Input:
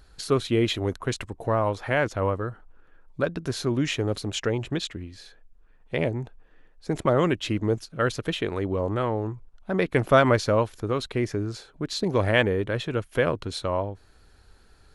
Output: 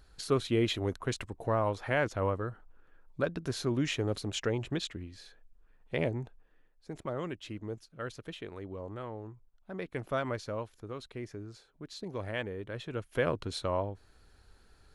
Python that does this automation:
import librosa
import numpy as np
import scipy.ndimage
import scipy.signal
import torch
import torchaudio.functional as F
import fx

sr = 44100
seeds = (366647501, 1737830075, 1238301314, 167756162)

y = fx.gain(x, sr, db=fx.line((6.17, -5.5), (6.9, -15.0), (12.53, -15.0), (13.34, -5.0)))